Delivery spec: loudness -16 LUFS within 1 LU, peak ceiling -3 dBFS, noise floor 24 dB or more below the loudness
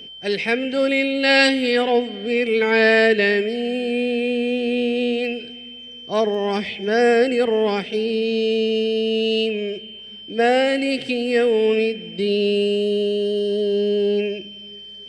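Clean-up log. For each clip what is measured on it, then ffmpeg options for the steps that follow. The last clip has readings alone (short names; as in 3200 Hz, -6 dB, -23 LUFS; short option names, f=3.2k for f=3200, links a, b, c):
steady tone 3100 Hz; tone level -36 dBFS; loudness -19.5 LUFS; peak -4.0 dBFS; loudness target -16.0 LUFS
-> -af "bandreject=f=3.1k:w=30"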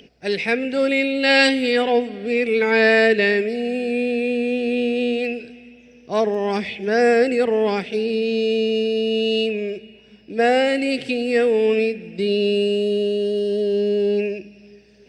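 steady tone none; loudness -19.5 LUFS; peak -4.0 dBFS; loudness target -16.0 LUFS
-> -af "volume=3.5dB,alimiter=limit=-3dB:level=0:latency=1"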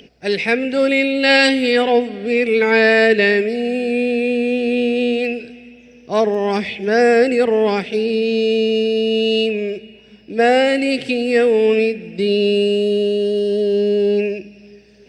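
loudness -16.5 LUFS; peak -3.0 dBFS; noise floor -45 dBFS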